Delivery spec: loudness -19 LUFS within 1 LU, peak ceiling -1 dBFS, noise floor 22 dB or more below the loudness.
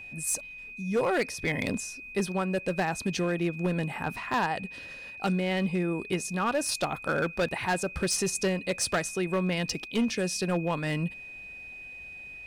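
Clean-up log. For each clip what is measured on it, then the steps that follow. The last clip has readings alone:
clipped 1.3%; flat tops at -21.0 dBFS; steady tone 2500 Hz; tone level -41 dBFS; loudness -29.5 LUFS; peak -21.0 dBFS; loudness target -19.0 LUFS
-> clip repair -21 dBFS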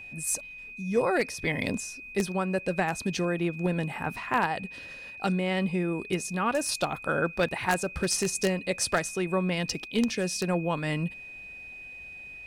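clipped 0.0%; steady tone 2500 Hz; tone level -41 dBFS
-> notch 2500 Hz, Q 30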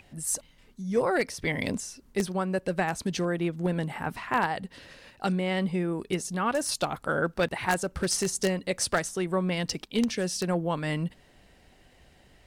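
steady tone none; loudness -29.0 LUFS; peak -11.5 dBFS; loudness target -19.0 LUFS
-> gain +10 dB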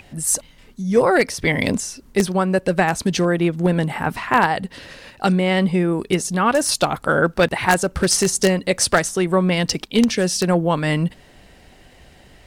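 loudness -19.0 LUFS; peak -1.5 dBFS; noise floor -49 dBFS

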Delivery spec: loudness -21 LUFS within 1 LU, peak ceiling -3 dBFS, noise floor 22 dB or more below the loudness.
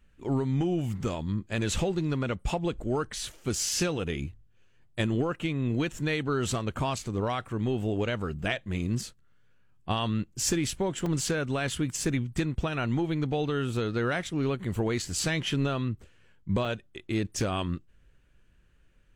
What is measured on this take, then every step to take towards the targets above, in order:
dropouts 2; longest dropout 3.4 ms; loudness -30.0 LUFS; peak -14.5 dBFS; loudness target -21.0 LUFS
-> interpolate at 11.06/16.65, 3.4 ms; gain +9 dB

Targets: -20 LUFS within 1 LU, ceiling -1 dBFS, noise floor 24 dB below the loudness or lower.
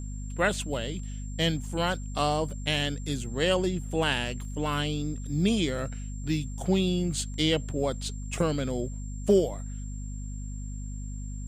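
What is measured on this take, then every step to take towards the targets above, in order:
hum 50 Hz; harmonics up to 250 Hz; hum level -33 dBFS; steady tone 7400 Hz; tone level -49 dBFS; loudness -29.5 LUFS; peak -11.0 dBFS; loudness target -20.0 LUFS
-> notches 50/100/150/200/250 Hz; notch 7400 Hz, Q 30; gain +9.5 dB

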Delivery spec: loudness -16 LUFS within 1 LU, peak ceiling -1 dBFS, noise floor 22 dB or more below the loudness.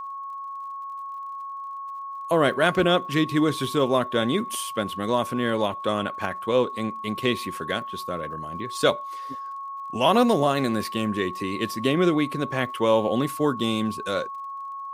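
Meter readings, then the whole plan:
ticks 49/s; steady tone 1100 Hz; tone level -32 dBFS; loudness -25.0 LUFS; peak -5.0 dBFS; loudness target -16.0 LUFS
-> de-click; notch 1100 Hz, Q 30; gain +9 dB; limiter -1 dBFS

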